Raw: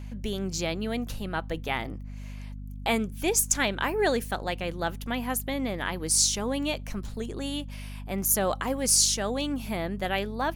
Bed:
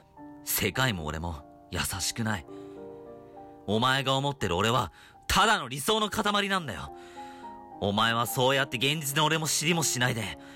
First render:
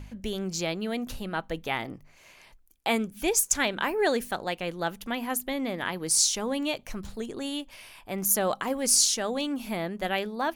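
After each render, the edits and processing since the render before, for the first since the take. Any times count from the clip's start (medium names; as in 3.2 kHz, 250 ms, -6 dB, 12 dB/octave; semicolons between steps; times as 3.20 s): de-hum 50 Hz, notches 5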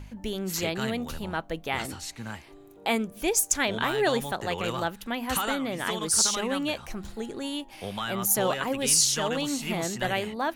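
add bed -8 dB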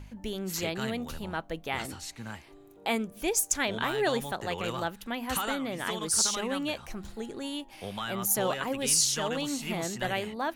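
trim -3 dB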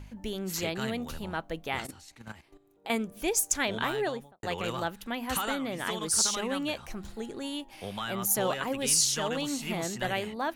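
1.80–2.90 s: level held to a coarse grid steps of 13 dB; 3.85–4.43 s: studio fade out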